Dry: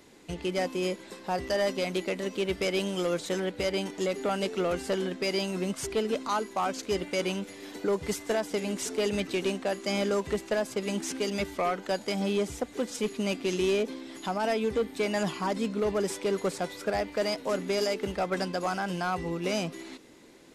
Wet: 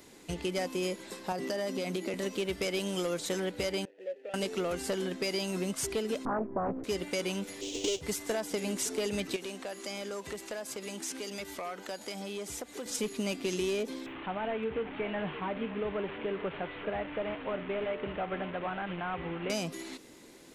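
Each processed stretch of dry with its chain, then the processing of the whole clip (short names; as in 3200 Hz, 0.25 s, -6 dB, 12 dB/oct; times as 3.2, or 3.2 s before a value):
1.32–2.14 HPF 190 Hz 24 dB/oct + low shelf 290 Hz +11 dB + compressor 3:1, threshold -30 dBFS
3.85–4.34 median filter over 25 samples + vowel filter e + low shelf 360 Hz -9 dB
6.25–6.84 LPF 1400 Hz 24 dB/oct + tilt -4.5 dB/oct + Doppler distortion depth 0.58 ms
7.61–8.01 half-waves squared off + EQ curve 120 Hz 0 dB, 190 Hz -18 dB, 300 Hz -1 dB, 470 Hz +2 dB, 1200 Hz -20 dB, 1700 Hz -18 dB, 3000 Hz +9 dB, 4500 Hz +1 dB, 6700 Hz +9 dB, 11000 Hz -19 dB
9.36–12.86 low shelf 240 Hz -9.5 dB + compressor 3:1, threshold -38 dBFS
14.06–19.5 delta modulation 16 kbps, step -31.5 dBFS + resonator 150 Hz, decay 0.35 s, mix 50% + echo 0.574 s -16 dB
whole clip: high shelf 6800 Hz +7.5 dB; compressor, threshold -29 dBFS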